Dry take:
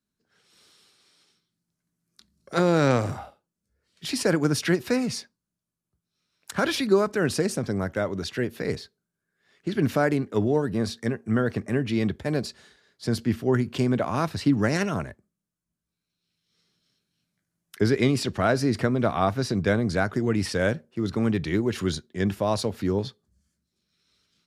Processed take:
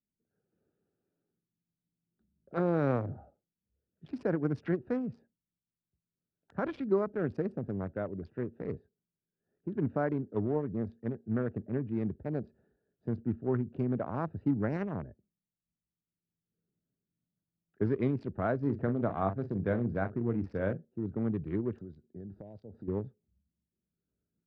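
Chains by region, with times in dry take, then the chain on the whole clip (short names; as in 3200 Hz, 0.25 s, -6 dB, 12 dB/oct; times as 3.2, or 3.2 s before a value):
18.62–20.85 doubler 42 ms -8.5 dB + mismatched tape noise reduction encoder only
21.78–22.88 resonant high shelf 3400 Hz +8 dB, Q 3 + compressor 16:1, threshold -31 dBFS
whole clip: Wiener smoothing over 41 samples; LPF 1400 Hz 12 dB/oct; gain -7.5 dB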